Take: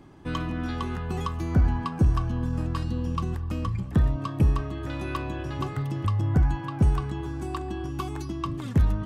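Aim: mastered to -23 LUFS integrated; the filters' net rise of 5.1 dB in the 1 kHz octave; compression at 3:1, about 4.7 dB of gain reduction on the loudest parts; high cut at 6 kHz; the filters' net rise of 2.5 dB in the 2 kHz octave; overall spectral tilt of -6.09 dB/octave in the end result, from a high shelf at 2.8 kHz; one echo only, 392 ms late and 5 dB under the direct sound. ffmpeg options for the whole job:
-af "lowpass=6000,equalizer=f=1000:t=o:g=6,equalizer=f=2000:t=o:g=3.5,highshelf=f=2800:g=-6.5,acompressor=threshold=0.0794:ratio=3,aecho=1:1:392:0.562,volume=1.78"

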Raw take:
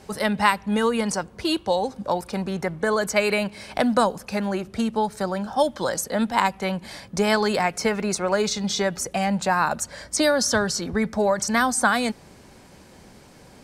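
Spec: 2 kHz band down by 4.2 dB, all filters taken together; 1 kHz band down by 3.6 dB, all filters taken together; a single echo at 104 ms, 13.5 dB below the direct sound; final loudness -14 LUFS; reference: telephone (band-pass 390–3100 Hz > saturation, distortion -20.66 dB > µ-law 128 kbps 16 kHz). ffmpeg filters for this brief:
-af "highpass=390,lowpass=3100,equalizer=f=1000:t=o:g=-3.5,equalizer=f=2000:t=o:g=-3.5,aecho=1:1:104:0.211,asoftclip=threshold=0.188,volume=5.31" -ar 16000 -c:a pcm_mulaw

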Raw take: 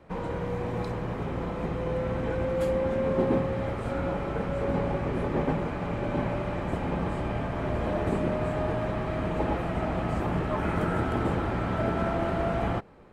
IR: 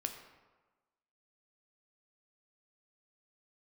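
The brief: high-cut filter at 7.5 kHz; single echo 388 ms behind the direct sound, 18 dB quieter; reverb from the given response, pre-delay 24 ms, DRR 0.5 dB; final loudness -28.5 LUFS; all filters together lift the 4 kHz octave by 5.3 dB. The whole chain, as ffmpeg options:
-filter_complex "[0:a]lowpass=7500,equalizer=f=4000:t=o:g=7.5,aecho=1:1:388:0.126,asplit=2[s0][s1];[1:a]atrim=start_sample=2205,adelay=24[s2];[s1][s2]afir=irnorm=-1:irlink=0,volume=0.944[s3];[s0][s3]amix=inputs=2:normalize=0,volume=0.75"

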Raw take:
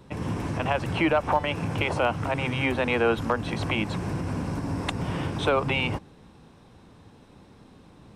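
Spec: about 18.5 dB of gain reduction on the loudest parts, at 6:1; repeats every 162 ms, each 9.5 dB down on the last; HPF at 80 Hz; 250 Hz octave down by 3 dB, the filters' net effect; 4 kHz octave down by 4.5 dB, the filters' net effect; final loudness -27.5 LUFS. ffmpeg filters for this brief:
-af "highpass=80,equalizer=f=250:t=o:g=-4,equalizer=f=4000:t=o:g=-7,acompressor=threshold=0.01:ratio=6,aecho=1:1:162|324|486|648:0.335|0.111|0.0365|0.012,volume=5.62"

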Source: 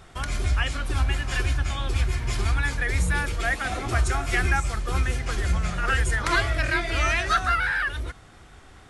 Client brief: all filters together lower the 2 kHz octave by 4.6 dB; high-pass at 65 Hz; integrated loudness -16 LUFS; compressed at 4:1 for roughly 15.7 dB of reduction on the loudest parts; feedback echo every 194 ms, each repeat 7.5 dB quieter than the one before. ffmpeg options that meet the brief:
-af "highpass=65,equalizer=f=2000:t=o:g=-6,acompressor=threshold=0.00891:ratio=4,aecho=1:1:194|388|582|776|970:0.422|0.177|0.0744|0.0312|0.0131,volume=17.8"

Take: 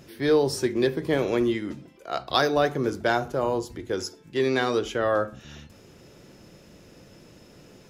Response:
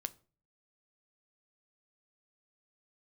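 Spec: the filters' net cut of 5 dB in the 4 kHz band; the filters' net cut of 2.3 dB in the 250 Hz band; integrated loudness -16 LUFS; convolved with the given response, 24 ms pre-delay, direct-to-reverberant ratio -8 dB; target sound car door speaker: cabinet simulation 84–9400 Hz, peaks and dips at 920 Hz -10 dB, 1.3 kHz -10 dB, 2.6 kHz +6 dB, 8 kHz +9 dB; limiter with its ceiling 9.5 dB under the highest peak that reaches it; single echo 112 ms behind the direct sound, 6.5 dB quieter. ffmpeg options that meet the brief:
-filter_complex "[0:a]equalizer=f=250:t=o:g=-3,equalizer=f=4000:t=o:g=-7.5,alimiter=limit=0.126:level=0:latency=1,aecho=1:1:112:0.473,asplit=2[s0][s1];[1:a]atrim=start_sample=2205,adelay=24[s2];[s1][s2]afir=irnorm=-1:irlink=0,volume=2.99[s3];[s0][s3]amix=inputs=2:normalize=0,highpass=84,equalizer=f=920:t=q:w=4:g=-10,equalizer=f=1300:t=q:w=4:g=-10,equalizer=f=2600:t=q:w=4:g=6,equalizer=f=8000:t=q:w=4:g=9,lowpass=f=9400:w=0.5412,lowpass=f=9400:w=1.3066,volume=1.78"

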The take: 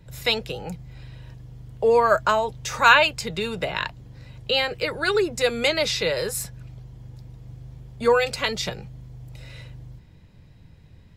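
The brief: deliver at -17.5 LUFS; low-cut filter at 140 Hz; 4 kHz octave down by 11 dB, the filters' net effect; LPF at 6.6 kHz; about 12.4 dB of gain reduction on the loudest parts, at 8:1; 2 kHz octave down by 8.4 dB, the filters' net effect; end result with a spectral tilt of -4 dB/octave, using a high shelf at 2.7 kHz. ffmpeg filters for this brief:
-af "highpass=140,lowpass=6600,equalizer=f=2000:t=o:g=-7.5,highshelf=f=2700:g=-8.5,equalizer=f=4000:t=o:g=-4,acompressor=threshold=0.0398:ratio=8,volume=6.68"

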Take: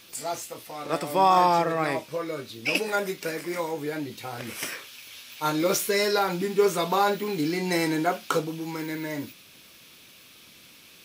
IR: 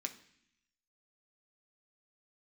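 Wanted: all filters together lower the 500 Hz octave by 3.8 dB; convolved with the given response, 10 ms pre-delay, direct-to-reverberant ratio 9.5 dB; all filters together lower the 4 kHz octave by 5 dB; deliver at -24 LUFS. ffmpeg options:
-filter_complex "[0:a]equalizer=f=500:t=o:g=-5,equalizer=f=4000:t=o:g=-6.5,asplit=2[s0][s1];[1:a]atrim=start_sample=2205,adelay=10[s2];[s1][s2]afir=irnorm=-1:irlink=0,volume=0.376[s3];[s0][s3]amix=inputs=2:normalize=0,volume=1.58"

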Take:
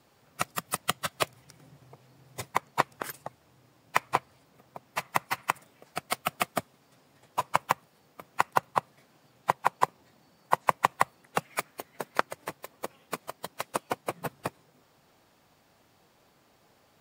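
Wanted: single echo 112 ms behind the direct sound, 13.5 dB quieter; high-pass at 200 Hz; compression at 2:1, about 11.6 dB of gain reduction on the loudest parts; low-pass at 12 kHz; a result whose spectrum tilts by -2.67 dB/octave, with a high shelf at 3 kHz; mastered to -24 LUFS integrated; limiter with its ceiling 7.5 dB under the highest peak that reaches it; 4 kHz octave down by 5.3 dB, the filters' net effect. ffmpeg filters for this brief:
-af "highpass=200,lowpass=12000,highshelf=f=3000:g=-5.5,equalizer=f=4000:t=o:g=-3,acompressor=threshold=0.00794:ratio=2,alimiter=limit=0.0668:level=0:latency=1,aecho=1:1:112:0.211,volume=12.6"

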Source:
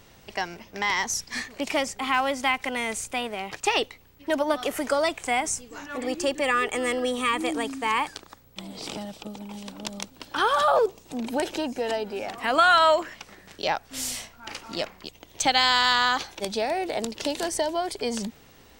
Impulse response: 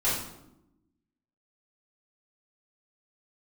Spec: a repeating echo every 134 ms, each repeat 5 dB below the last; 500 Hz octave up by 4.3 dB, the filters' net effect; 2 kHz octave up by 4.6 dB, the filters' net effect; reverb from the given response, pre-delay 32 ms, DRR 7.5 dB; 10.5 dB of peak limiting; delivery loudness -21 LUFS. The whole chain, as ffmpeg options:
-filter_complex "[0:a]equalizer=f=500:t=o:g=5,equalizer=f=2000:t=o:g=5.5,alimiter=limit=0.2:level=0:latency=1,aecho=1:1:134|268|402|536|670|804|938:0.562|0.315|0.176|0.0988|0.0553|0.031|0.0173,asplit=2[s0][s1];[1:a]atrim=start_sample=2205,adelay=32[s2];[s1][s2]afir=irnorm=-1:irlink=0,volume=0.119[s3];[s0][s3]amix=inputs=2:normalize=0,volume=1.41"

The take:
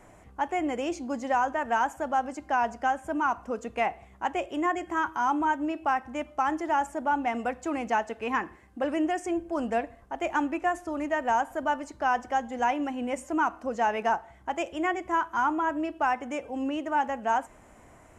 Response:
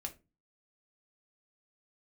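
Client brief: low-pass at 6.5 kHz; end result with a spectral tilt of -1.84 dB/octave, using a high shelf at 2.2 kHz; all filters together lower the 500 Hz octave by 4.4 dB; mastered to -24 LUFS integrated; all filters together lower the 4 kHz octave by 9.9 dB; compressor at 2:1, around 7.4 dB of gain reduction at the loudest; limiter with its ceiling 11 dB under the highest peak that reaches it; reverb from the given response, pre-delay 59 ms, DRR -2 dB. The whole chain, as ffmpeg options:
-filter_complex "[0:a]lowpass=6500,equalizer=f=500:t=o:g=-5.5,highshelf=f=2200:g=-7.5,equalizer=f=4000:t=o:g=-8,acompressor=threshold=0.0126:ratio=2,alimiter=level_in=3.76:limit=0.0631:level=0:latency=1,volume=0.266,asplit=2[s0][s1];[1:a]atrim=start_sample=2205,adelay=59[s2];[s1][s2]afir=irnorm=-1:irlink=0,volume=1.58[s3];[s0][s3]amix=inputs=2:normalize=0,volume=5.96"

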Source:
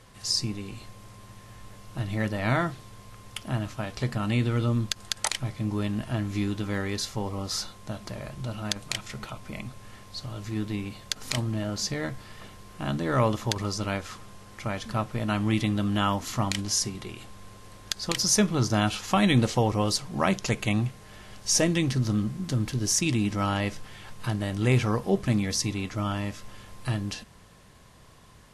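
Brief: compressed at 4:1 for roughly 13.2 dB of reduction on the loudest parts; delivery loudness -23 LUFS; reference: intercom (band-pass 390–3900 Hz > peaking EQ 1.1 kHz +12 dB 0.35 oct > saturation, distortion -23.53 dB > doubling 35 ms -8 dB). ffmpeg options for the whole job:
-filter_complex "[0:a]acompressor=threshold=0.0224:ratio=4,highpass=390,lowpass=3900,equalizer=f=1100:t=o:w=0.35:g=12,asoftclip=threshold=0.106,asplit=2[s0][s1];[s1]adelay=35,volume=0.398[s2];[s0][s2]amix=inputs=2:normalize=0,volume=6.68"

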